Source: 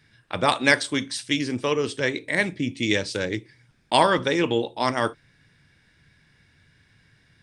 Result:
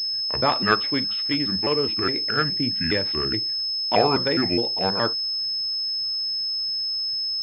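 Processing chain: pitch shift switched off and on -5 st, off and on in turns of 208 ms; class-D stage that switches slowly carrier 5.2 kHz

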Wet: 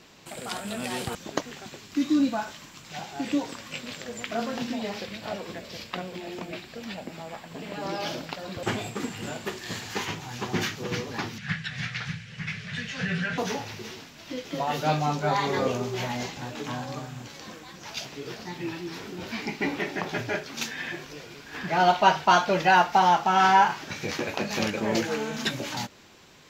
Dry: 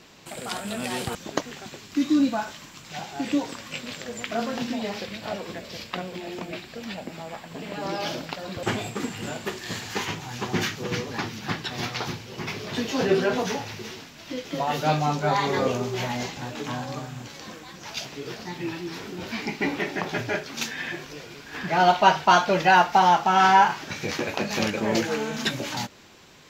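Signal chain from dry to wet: 11.38–13.38 s: FFT filter 110 Hz 0 dB, 170 Hz +6 dB, 330 Hz -26 dB, 470 Hz -13 dB, 980 Hz -14 dB, 1.7 kHz +6 dB, 5 kHz -6 dB, 9.3 kHz -4 dB, 15 kHz -26 dB; trim -2 dB

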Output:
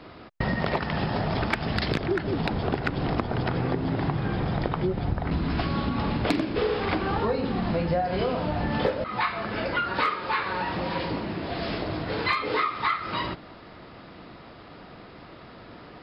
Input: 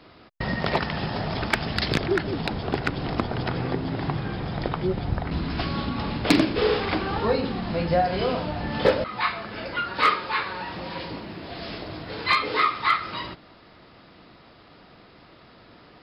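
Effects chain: treble shelf 3.7 kHz -9 dB; compression 5:1, threshold -29 dBFS, peak gain reduction 14 dB; trim +6 dB

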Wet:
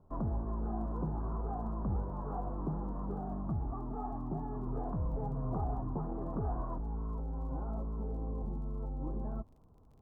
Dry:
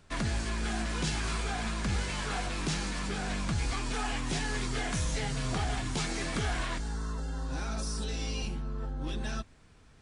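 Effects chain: steep low-pass 1.1 kHz 48 dB/octave; crackle 32 per s -57 dBFS; 3.19–4.67 s: comb of notches 500 Hz; trim -2.5 dB

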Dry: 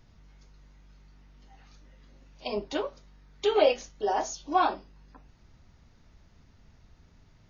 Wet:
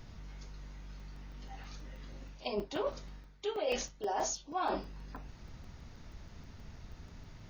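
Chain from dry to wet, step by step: reverse; compression 12:1, threshold -39 dBFS, peak gain reduction 23 dB; reverse; crackling interface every 0.16 s, samples 128, zero, from 1.00 s; trim +7.5 dB

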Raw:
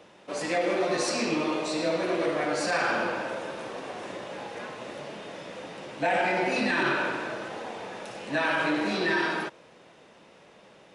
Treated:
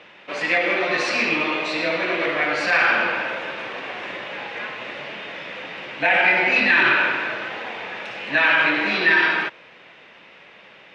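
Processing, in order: low-pass 4.4 kHz 12 dB/octave; peaking EQ 2.3 kHz +15 dB 1.8 oct

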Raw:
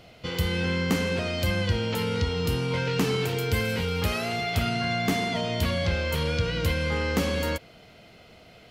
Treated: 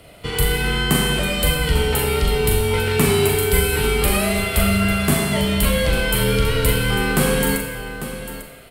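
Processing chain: resonant high shelf 7.5 kHz +7.5 dB, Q 3; in parallel at -11 dB: crossover distortion -45.5 dBFS; on the sum: frequency shift -36 Hz; multi-tap echo 40/847 ms -6/-11.5 dB; Schroeder reverb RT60 1 s, combs from 30 ms, DRR 4 dB; trim +4.5 dB

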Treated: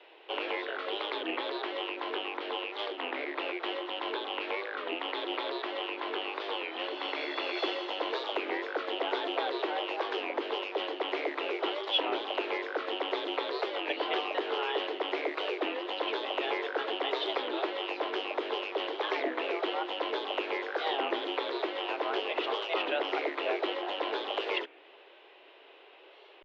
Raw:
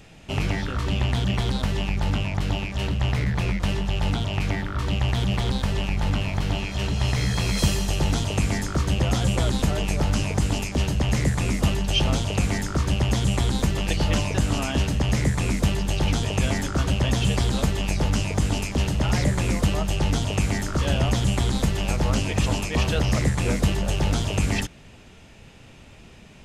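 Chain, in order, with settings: mistuned SSB +160 Hz 230–3600 Hz; warped record 33 1/3 rpm, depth 160 cents; trim -3.5 dB

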